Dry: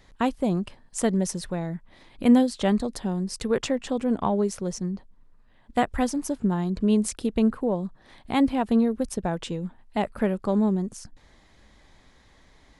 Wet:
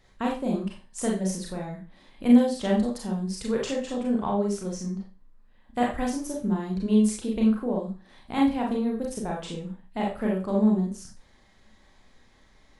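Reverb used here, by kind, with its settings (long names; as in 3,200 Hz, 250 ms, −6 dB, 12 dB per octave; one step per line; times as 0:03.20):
four-comb reverb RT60 0.32 s, combs from 29 ms, DRR −2 dB
level −6.5 dB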